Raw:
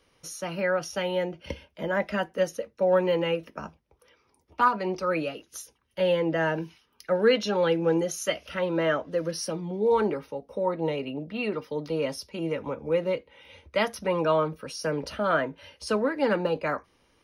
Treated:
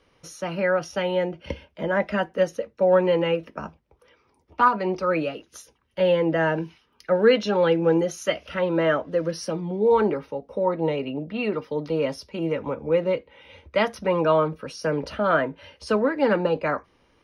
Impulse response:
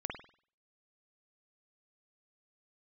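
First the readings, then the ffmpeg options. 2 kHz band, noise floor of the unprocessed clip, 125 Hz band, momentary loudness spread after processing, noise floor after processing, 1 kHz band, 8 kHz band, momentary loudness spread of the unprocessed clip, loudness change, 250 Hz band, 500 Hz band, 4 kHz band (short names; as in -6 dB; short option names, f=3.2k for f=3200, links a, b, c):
+3.0 dB, -68 dBFS, +4.0 dB, 12 LU, -65 dBFS, +3.5 dB, -3.5 dB, 12 LU, +3.5 dB, +4.0 dB, +4.0 dB, +1.0 dB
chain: -af "aemphasis=mode=reproduction:type=50kf,volume=4dB"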